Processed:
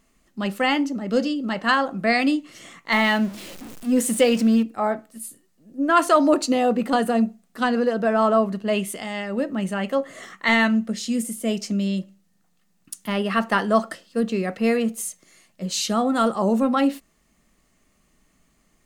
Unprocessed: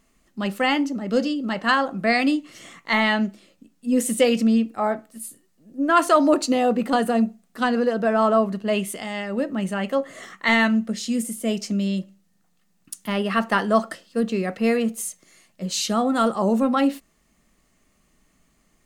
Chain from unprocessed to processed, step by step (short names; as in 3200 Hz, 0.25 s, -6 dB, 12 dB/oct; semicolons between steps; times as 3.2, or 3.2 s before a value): 2.92–4.63 zero-crossing step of -33.5 dBFS